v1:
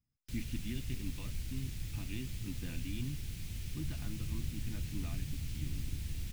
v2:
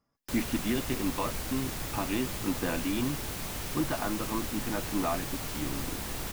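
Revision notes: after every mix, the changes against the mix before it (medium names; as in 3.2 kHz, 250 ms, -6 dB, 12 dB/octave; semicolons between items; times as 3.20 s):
first sound: add treble shelf 8.3 kHz +5 dB; second sound: muted; master: remove FFT filter 110 Hz 0 dB, 620 Hz -26 dB, 1.1 kHz -27 dB, 2.4 kHz -10 dB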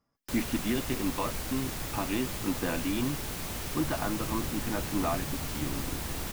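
second sound: unmuted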